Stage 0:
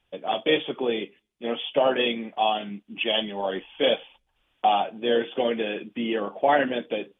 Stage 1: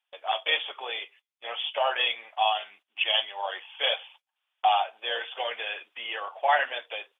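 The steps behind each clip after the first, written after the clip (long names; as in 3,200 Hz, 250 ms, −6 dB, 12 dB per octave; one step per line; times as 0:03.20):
high-pass filter 760 Hz 24 dB per octave
noise gate −57 dBFS, range −11 dB
level +1.5 dB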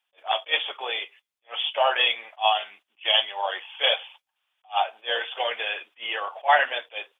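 level that may rise only so fast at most 380 dB per second
level +4.5 dB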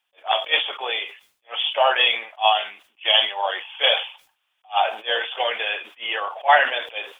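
level that may fall only so fast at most 130 dB per second
level +3.5 dB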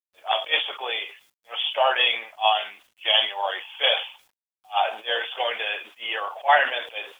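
bit reduction 10 bits
level −2.5 dB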